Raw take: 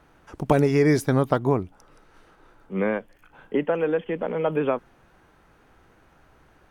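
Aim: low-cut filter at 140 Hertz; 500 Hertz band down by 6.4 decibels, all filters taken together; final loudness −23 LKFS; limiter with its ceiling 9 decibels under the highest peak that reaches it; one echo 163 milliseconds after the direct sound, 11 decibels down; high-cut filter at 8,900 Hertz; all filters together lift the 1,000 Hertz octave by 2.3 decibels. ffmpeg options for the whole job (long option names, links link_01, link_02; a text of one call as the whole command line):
ffmpeg -i in.wav -af "highpass=140,lowpass=8900,equalizer=frequency=500:width_type=o:gain=-9,equalizer=frequency=1000:width_type=o:gain=6,alimiter=limit=-14dB:level=0:latency=1,aecho=1:1:163:0.282,volume=5.5dB" out.wav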